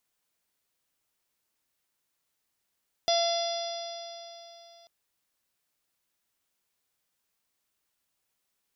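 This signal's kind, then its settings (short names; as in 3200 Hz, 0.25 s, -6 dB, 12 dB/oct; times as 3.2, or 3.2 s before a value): stretched partials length 1.79 s, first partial 679 Hz, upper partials -19.5/-17/-19.5/-6/-15/-6/-11 dB, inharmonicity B 0.0016, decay 3.31 s, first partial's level -23 dB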